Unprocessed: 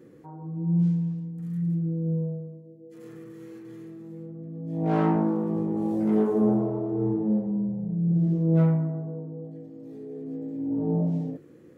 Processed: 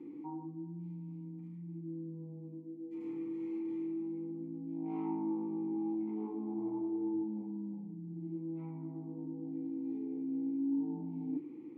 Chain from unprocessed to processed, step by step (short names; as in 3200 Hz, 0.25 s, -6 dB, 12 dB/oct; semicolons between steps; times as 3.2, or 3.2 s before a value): notches 60/120/180/240/300/360/420 Hz; reverse; compressor 5:1, threshold -39 dBFS, peak gain reduction 20 dB; reverse; vowel filter u; gain +12 dB